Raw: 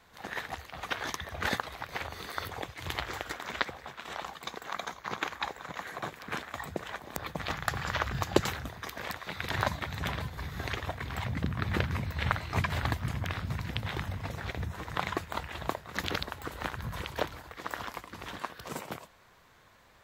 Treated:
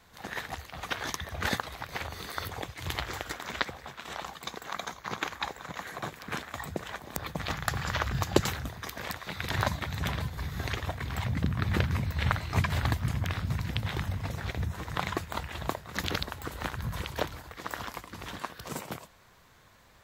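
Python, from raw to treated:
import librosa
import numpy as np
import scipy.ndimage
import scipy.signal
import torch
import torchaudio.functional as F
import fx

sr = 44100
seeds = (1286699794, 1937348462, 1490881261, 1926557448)

y = fx.bass_treble(x, sr, bass_db=4, treble_db=4)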